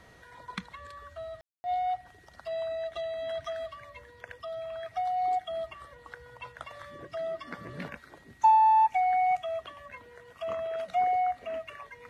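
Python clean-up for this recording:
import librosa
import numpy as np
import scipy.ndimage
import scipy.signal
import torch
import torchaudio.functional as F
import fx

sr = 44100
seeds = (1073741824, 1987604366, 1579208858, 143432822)

y = fx.notch(x, sr, hz=1900.0, q=30.0)
y = fx.fix_ambience(y, sr, seeds[0], print_start_s=7.93, print_end_s=8.43, start_s=1.41, end_s=1.64)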